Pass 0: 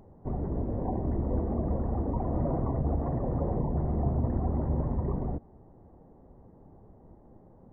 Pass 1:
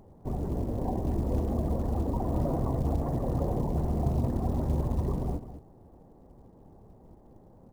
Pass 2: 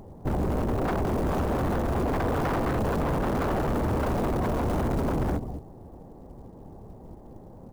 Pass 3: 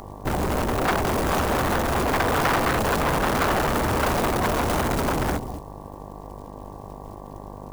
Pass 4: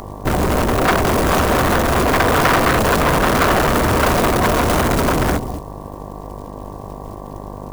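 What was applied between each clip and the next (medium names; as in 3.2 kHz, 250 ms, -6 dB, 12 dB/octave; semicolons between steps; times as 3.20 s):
on a send: delay 209 ms -11.5 dB; on the sum: short-mantissa float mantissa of 4-bit
wavefolder -29.5 dBFS; trim +8.5 dB
mains buzz 50 Hz, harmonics 23, -42 dBFS -4 dB/octave; tilt shelf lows -7.5 dB, about 930 Hz; trim +7.5 dB
band-stop 840 Hz, Q 12; trim +7.5 dB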